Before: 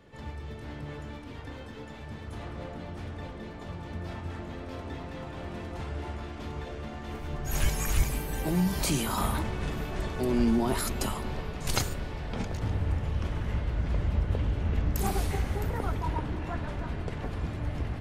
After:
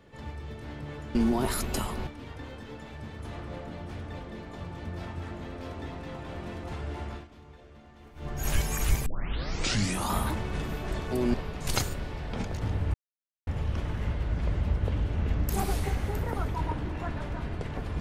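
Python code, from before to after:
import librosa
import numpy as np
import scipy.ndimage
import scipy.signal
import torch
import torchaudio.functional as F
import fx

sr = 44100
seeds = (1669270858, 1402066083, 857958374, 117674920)

y = fx.edit(x, sr, fx.fade_down_up(start_s=6.22, length_s=1.15, db=-13.5, fade_s=0.14),
    fx.tape_start(start_s=8.14, length_s=1.07),
    fx.move(start_s=10.42, length_s=0.92, to_s=1.15),
    fx.insert_silence(at_s=12.94, length_s=0.53), tone=tone)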